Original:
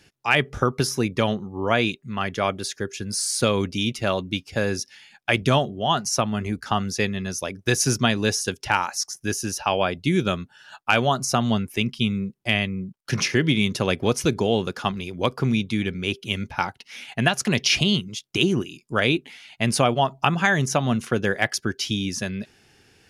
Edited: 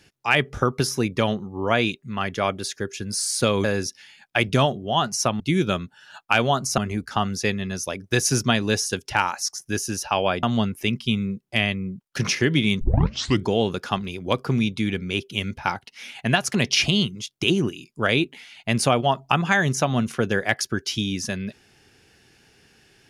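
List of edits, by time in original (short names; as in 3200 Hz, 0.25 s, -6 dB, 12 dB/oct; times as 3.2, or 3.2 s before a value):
3.64–4.57 cut
9.98–11.36 move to 6.33
13.74 tape start 0.66 s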